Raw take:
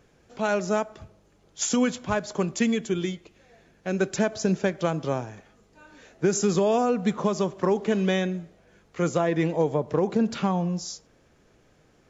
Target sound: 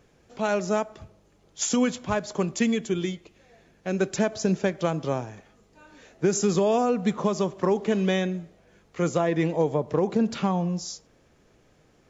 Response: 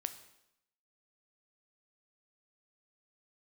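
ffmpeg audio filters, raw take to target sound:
-af "equalizer=frequency=1500:width=5.3:gain=-2.5"

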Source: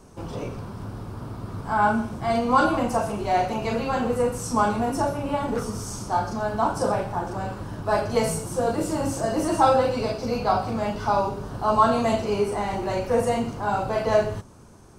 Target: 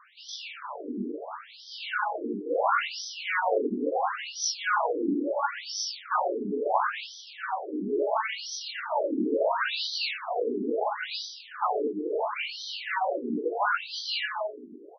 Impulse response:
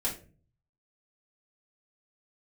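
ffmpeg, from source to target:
-filter_complex "[0:a]highshelf=frequency=4000:gain=5,bandreject=frequency=510:width=13,aecho=1:1:20|50|95|162.5|263.8:0.631|0.398|0.251|0.158|0.1,asplit=2[link_01][link_02];[1:a]atrim=start_sample=2205,lowpass=frequency=2300:width=0.5412,lowpass=frequency=2300:width=1.3066,lowshelf=frequency=410:gain=11[link_03];[link_02][link_03]afir=irnorm=-1:irlink=0,volume=-22.5dB[link_04];[link_01][link_04]amix=inputs=2:normalize=0,afftfilt=real='re*lt(hypot(re,im),0.355)':imag='im*lt(hypot(re,im),0.355)':win_size=1024:overlap=0.75,acrossover=split=180|2300[link_05][link_06][link_07];[link_05]acontrast=49[link_08];[link_08][link_06][link_07]amix=inputs=3:normalize=0,highpass=frequency=100:poles=1,bandreject=frequency=128.4:width_type=h:width=4,bandreject=frequency=256.8:width_type=h:width=4,bandreject=frequency=385.2:width_type=h:width=4,bandreject=frequency=513.6:width_type=h:width=4,bandreject=frequency=642:width_type=h:width=4,bandreject=frequency=770.4:width_type=h:width=4,bandreject=frequency=898.8:width_type=h:width=4,bandreject=frequency=1027.2:width_type=h:width=4,afftfilt=real='re*between(b*sr/1024,300*pow(4400/300,0.5+0.5*sin(2*PI*0.73*pts/sr))/1.41,300*pow(4400/300,0.5+0.5*sin(2*PI*0.73*pts/sr))*1.41)':imag='im*between(b*sr/1024,300*pow(4400/300,0.5+0.5*sin(2*PI*0.73*pts/sr))/1.41,300*pow(4400/300,0.5+0.5*sin(2*PI*0.73*pts/sr))*1.41)':win_size=1024:overlap=0.75,volume=7.5dB"

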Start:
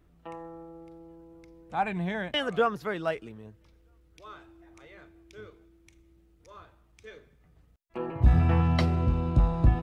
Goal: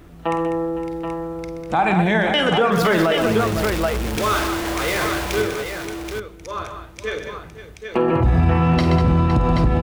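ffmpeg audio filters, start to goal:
ffmpeg -i in.wav -filter_complex "[0:a]asettb=1/sr,asplit=3[link_01][link_02][link_03];[link_01]atrim=end=2.724[link_04];[link_02]atrim=start=2.72:end=5.42,asetpts=PTS-STARTPTS,afade=type=in:duration=0.004:curve=qsin,afade=type=out:start_time=2.696:duration=0.004:curve=qsin,aeval=exprs='val(0)+0.5*0.0106*sgn(val(0))':channel_layout=same[link_05];[link_03]atrim=start=5.416[link_06];[link_04][link_05]acrossfade=duration=0.004:curve1=hsin:curve2=qsin[link_07];[link_07][link_06]acrossfade=duration=0.004:curve1=qsin:curve2=hsin,lowshelf=frequency=110:gain=-5,acompressor=threshold=-34dB:ratio=3,aecho=1:1:49|127|197|511|779:0.316|0.266|0.355|0.2|0.447,alimiter=level_in=28dB:limit=-1dB:release=50:level=0:latency=1,volume=-7.5dB" out.wav

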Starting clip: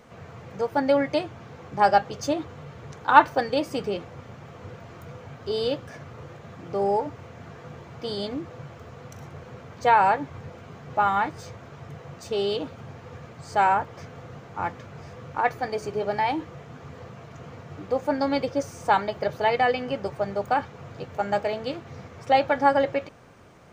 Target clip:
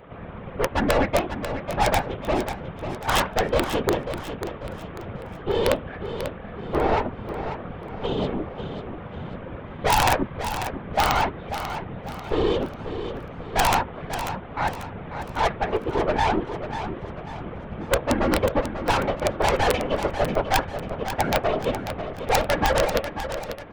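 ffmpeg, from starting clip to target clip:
ffmpeg -i in.wav -filter_complex "[0:a]lowpass=frequency=2700:poles=1,aresample=8000,aeval=exprs='0.841*sin(PI/2*3.98*val(0)/0.841)':channel_layout=same,aresample=44100,aeval=exprs='(tanh(3.98*val(0)+0.75)-tanh(0.75))/3.98':channel_layout=same,afftfilt=real='hypot(re,im)*cos(2*PI*random(0))':imag='hypot(re,im)*sin(2*PI*random(1))':win_size=512:overlap=0.75,aeval=exprs='(mod(3.16*val(0)+1,2)-1)/3.16':channel_layout=same,asplit=2[link_01][link_02];[link_02]aecho=0:1:542|1084|1626|2168:0.335|0.137|0.0563|0.0231[link_03];[link_01][link_03]amix=inputs=2:normalize=0" out.wav

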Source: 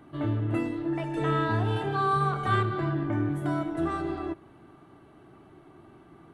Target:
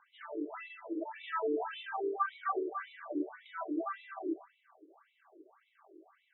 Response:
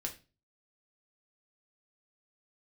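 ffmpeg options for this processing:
-filter_complex "[0:a]asplit=2[link_01][link_02];[1:a]atrim=start_sample=2205,adelay=115[link_03];[link_02][link_03]afir=irnorm=-1:irlink=0,volume=-6.5dB[link_04];[link_01][link_04]amix=inputs=2:normalize=0,afftfilt=real='re*between(b*sr/1024,380*pow(2900/380,0.5+0.5*sin(2*PI*1.8*pts/sr))/1.41,380*pow(2900/380,0.5+0.5*sin(2*PI*1.8*pts/sr))*1.41)':imag='im*between(b*sr/1024,380*pow(2900/380,0.5+0.5*sin(2*PI*1.8*pts/sr))/1.41,380*pow(2900/380,0.5+0.5*sin(2*PI*1.8*pts/sr))*1.41)':win_size=1024:overlap=0.75,volume=-2dB"

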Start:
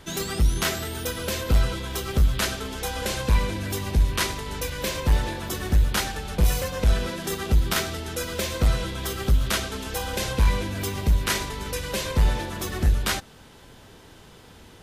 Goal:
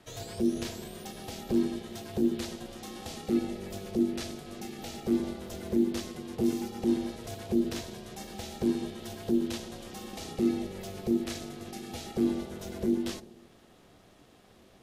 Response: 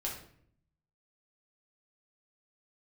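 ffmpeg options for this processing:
-filter_complex "[0:a]acrossover=split=490|3000[link_01][link_02][link_03];[link_02]acompressor=threshold=-44dB:ratio=2[link_04];[link_01][link_04][link_03]amix=inputs=3:normalize=0,asplit=2[link_05][link_06];[link_06]lowshelf=frequency=690:width_type=q:width=3:gain=8[link_07];[1:a]atrim=start_sample=2205[link_08];[link_07][link_08]afir=irnorm=-1:irlink=0,volume=-18dB[link_09];[link_05][link_09]amix=inputs=2:normalize=0,aeval=exprs='val(0)*sin(2*PI*290*n/s)':channel_layout=same,acrossover=split=7800[link_10][link_11];[link_11]acompressor=threshold=-41dB:ratio=4:attack=1:release=60[link_12];[link_10][link_12]amix=inputs=2:normalize=0,volume=-9dB"

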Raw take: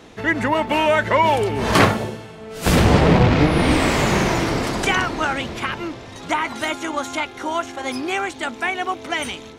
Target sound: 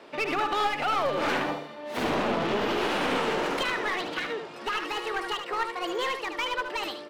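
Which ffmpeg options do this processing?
ffmpeg -i in.wav -filter_complex "[0:a]acrossover=split=160 3000:gain=0.0794 1 0.178[link_01][link_02][link_03];[link_01][link_02][link_03]amix=inputs=3:normalize=0,alimiter=limit=-13dB:level=0:latency=1:release=141,aeval=exprs='clip(val(0),-1,0.0794)':channel_layout=same,asplit=2[link_04][link_05];[link_05]aecho=0:1:100:0.422[link_06];[link_04][link_06]amix=inputs=2:normalize=0,asetrate=59535,aresample=44100,volume=-4dB" out.wav

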